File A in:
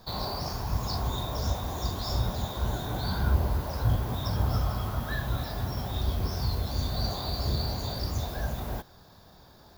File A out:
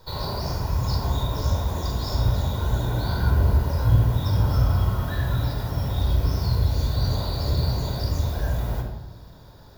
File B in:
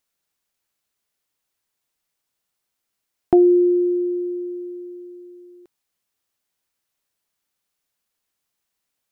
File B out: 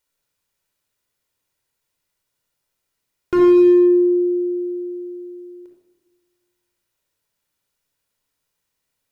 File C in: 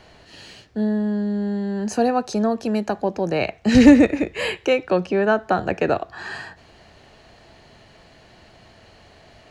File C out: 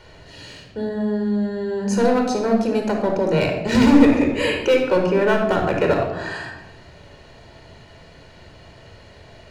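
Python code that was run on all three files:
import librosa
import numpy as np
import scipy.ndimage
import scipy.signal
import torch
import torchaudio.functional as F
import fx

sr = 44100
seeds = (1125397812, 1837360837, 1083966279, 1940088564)

y = np.clip(10.0 ** (15.0 / 20.0) * x, -1.0, 1.0) / 10.0 ** (15.0 / 20.0)
y = fx.room_shoebox(y, sr, seeds[0], volume_m3=3900.0, walls='furnished', distance_m=4.7)
y = F.gain(torch.from_numpy(y), -1.0).numpy()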